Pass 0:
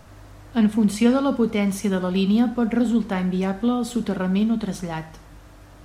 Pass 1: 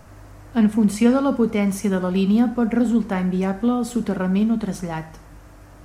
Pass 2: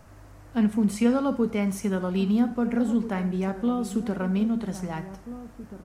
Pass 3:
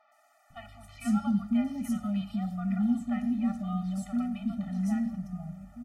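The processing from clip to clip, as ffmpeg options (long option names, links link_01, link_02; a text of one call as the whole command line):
ffmpeg -i in.wav -af "equalizer=frequency=3600:width_type=o:width=0.69:gain=-7,volume=1.5dB" out.wav
ffmpeg -i in.wav -filter_complex "[0:a]asplit=2[link_01][link_02];[link_02]adelay=1633,volume=-13dB,highshelf=frequency=4000:gain=-36.7[link_03];[link_01][link_03]amix=inputs=2:normalize=0,volume=-5.5dB" out.wav
ffmpeg -i in.wav -filter_complex "[0:a]acrossover=split=560|4100[link_01][link_02][link_03];[link_03]adelay=120[link_04];[link_01]adelay=500[link_05];[link_05][link_02][link_04]amix=inputs=3:normalize=0,afftfilt=real='re*eq(mod(floor(b*sr/1024/290),2),0)':imag='im*eq(mod(floor(b*sr/1024/290),2),0)':win_size=1024:overlap=0.75,volume=-4dB" out.wav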